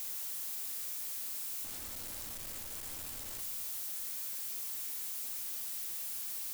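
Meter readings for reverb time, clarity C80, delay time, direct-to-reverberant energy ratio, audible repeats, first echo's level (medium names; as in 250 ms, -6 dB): 1.7 s, 11.0 dB, no echo, 7.0 dB, no echo, no echo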